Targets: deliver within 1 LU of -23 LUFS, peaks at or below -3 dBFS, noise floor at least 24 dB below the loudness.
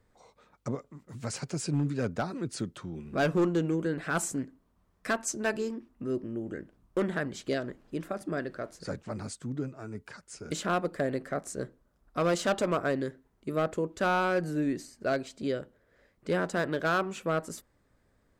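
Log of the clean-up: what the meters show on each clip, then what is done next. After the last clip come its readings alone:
clipped 0.8%; flat tops at -21.0 dBFS; loudness -32.0 LUFS; peak -21.0 dBFS; loudness target -23.0 LUFS
-> clip repair -21 dBFS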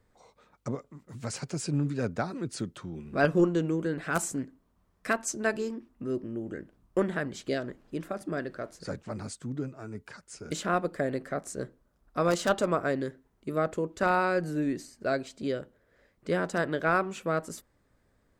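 clipped 0.0%; loudness -31.0 LUFS; peak -12.0 dBFS; loudness target -23.0 LUFS
-> gain +8 dB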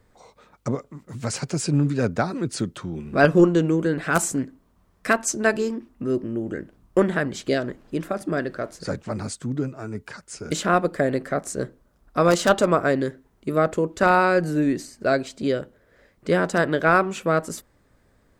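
loudness -23.0 LUFS; peak -4.0 dBFS; noise floor -62 dBFS

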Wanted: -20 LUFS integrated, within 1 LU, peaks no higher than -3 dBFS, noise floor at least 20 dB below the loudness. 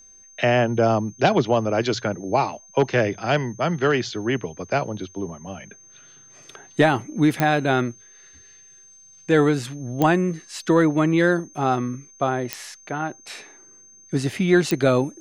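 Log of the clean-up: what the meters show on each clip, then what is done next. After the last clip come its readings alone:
clicks 4; steady tone 6300 Hz; tone level -47 dBFS; loudness -22.0 LUFS; peak -5.0 dBFS; loudness target -20.0 LUFS
-> de-click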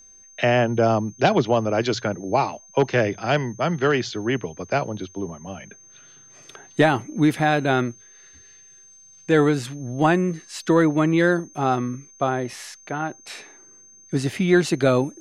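clicks 0; steady tone 6300 Hz; tone level -47 dBFS
-> notch 6300 Hz, Q 30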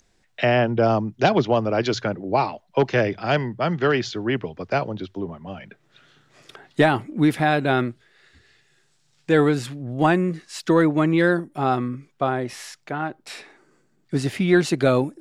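steady tone none; loudness -22.0 LUFS; peak -5.5 dBFS; loudness target -20.0 LUFS
-> gain +2 dB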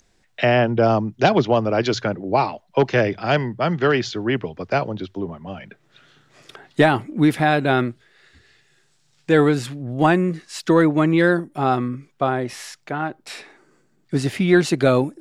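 loudness -20.0 LUFS; peak -3.5 dBFS; noise floor -62 dBFS

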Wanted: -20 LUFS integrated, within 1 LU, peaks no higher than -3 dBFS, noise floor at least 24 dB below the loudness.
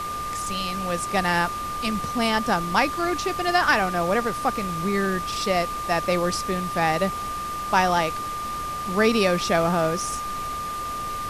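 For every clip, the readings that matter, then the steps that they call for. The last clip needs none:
steady tone 1200 Hz; tone level -28 dBFS; noise floor -30 dBFS; noise floor target -48 dBFS; loudness -24.0 LUFS; peak -5.5 dBFS; loudness target -20.0 LUFS
-> notch 1200 Hz, Q 30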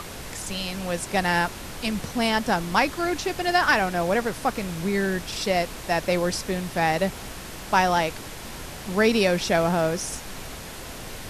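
steady tone none; noise floor -38 dBFS; noise floor target -49 dBFS
-> noise print and reduce 11 dB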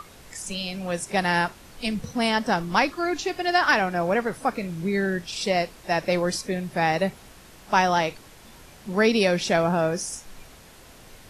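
noise floor -49 dBFS; loudness -24.5 LUFS; peak -6.0 dBFS; loudness target -20.0 LUFS
-> gain +4.5 dB; limiter -3 dBFS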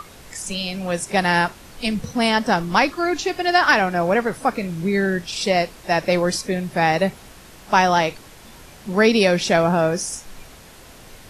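loudness -20.0 LUFS; peak -3.0 dBFS; noise floor -44 dBFS

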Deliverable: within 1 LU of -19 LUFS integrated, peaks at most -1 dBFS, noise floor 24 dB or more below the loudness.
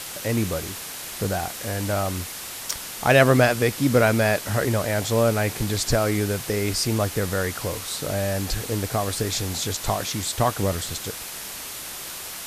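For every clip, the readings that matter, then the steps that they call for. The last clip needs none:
noise floor -35 dBFS; noise floor target -48 dBFS; loudness -24.0 LUFS; peak -3.0 dBFS; loudness target -19.0 LUFS
-> denoiser 13 dB, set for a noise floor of -35 dBFS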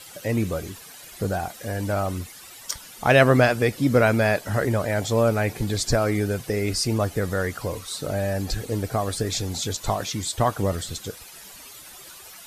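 noise floor -44 dBFS; noise floor target -48 dBFS
-> denoiser 6 dB, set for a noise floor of -44 dBFS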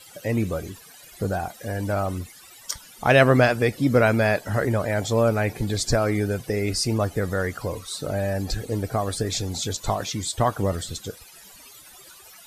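noise floor -48 dBFS; loudness -24.0 LUFS; peak -3.0 dBFS; loudness target -19.0 LUFS
-> gain +5 dB; limiter -1 dBFS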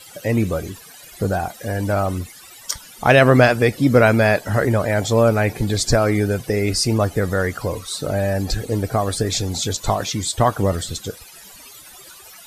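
loudness -19.0 LUFS; peak -1.0 dBFS; noise floor -43 dBFS

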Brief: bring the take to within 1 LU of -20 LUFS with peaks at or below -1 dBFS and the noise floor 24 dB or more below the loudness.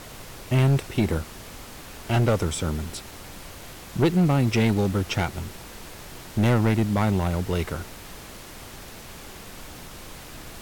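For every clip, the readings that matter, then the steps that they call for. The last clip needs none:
clipped 1.8%; flat tops at -15.0 dBFS; noise floor -42 dBFS; noise floor target -48 dBFS; loudness -24.0 LUFS; peak -15.0 dBFS; loudness target -20.0 LUFS
-> clip repair -15 dBFS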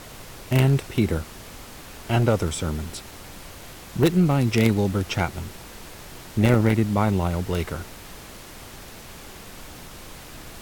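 clipped 0.0%; noise floor -42 dBFS; noise floor target -47 dBFS
-> noise print and reduce 6 dB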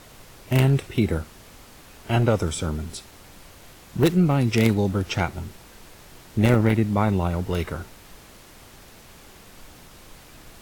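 noise floor -48 dBFS; loudness -22.5 LUFS; peak -6.0 dBFS; loudness target -20.0 LUFS
-> gain +2.5 dB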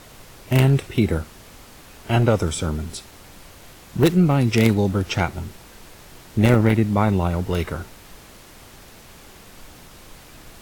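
loudness -20.0 LUFS; peak -3.5 dBFS; noise floor -45 dBFS

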